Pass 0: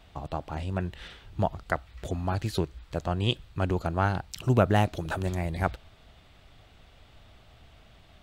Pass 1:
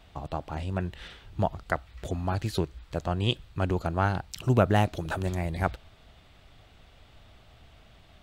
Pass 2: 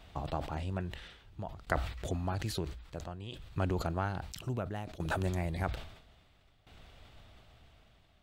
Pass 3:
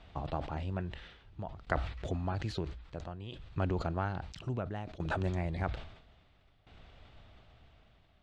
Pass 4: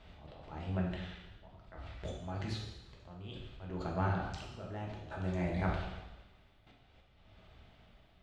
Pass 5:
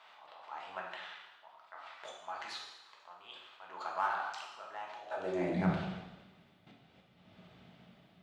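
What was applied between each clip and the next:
no processing that can be heard
downward compressor 2 to 1, threshold −29 dBFS, peak gain reduction 7.5 dB; shaped tremolo saw down 0.6 Hz, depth 85%; level that may fall only so fast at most 77 dB per second
high-frequency loss of the air 120 metres
volume swells 461 ms; coupled-rooms reverb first 0.98 s, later 2.6 s, from −28 dB, DRR −2.5 dB; level −2.5 dB
high-pass filter sweep 1,000 Hz → 170 Hz, 0:04.92–0:05.70; in parallel at −9.5 dB: hard clipping −36.5 dBFS, distortion −5 dB; on the sum: level −1 dB

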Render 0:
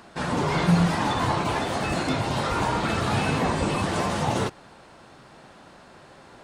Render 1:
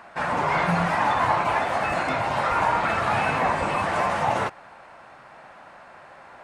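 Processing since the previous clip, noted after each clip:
flat-topped bell 1,200 Hz +11.5 dB 2.5 octaves
level −6.5 dB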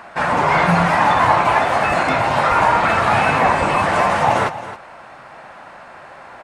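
single-tap delay 270 ms −14 dB
level +7.5 dB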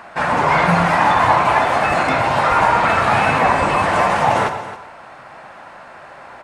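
convolution reverb, pre-delay 3 ms, DRR 10.5 dB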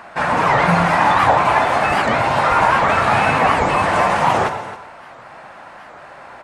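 wow of a warped record 78 rpm, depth 250 cents

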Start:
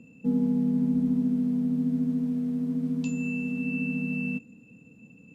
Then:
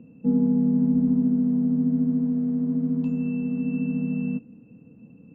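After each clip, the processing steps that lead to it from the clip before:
low-pass filter 1,200 Hz 12 dB per octave
level +4 dB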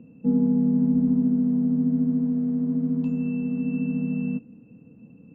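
no processing that can be heard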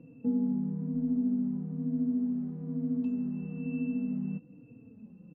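downward compressor 2 to 1, threshold −30 dBFS, peak gain reduction 7.5 dB
high-frequency loss of the air 58 metres
barber-pole flanger 3.7 ms −1.1 Hz

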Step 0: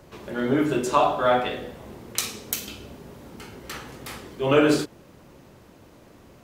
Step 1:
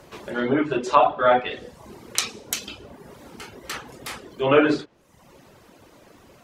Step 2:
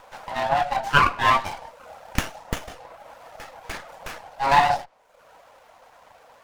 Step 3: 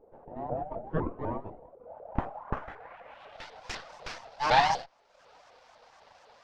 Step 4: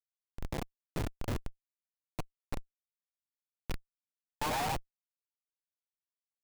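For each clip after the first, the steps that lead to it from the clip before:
treble cut that deepens with the level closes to 2,800 Hz, closed at −19 dBFS; reverb reduction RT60 0.83 s; low-shelf EQ 310 Hz −7.5 dB; level +5 dB
frequency shifter +420 Hz; windowed peak hold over 9 samples
low-pass filter sweep 410 Hz → 5,100 Hz, 0:01.70–0:03.62; pitch modulation by a square or saw wave saw up 4 Hz, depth 250 cents; level −6 dB
comparator with hysteresis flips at −29 dBFS; level +2 dB

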